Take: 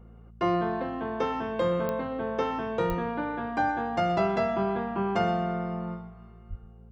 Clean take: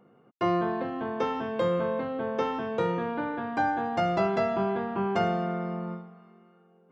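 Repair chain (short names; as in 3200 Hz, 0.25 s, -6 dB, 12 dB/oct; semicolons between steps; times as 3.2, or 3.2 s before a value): de-click; de-hum 56.2 Hz, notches 4; de-plosive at 2.88/6.49; inverse comb 0.121 s -15.5 dB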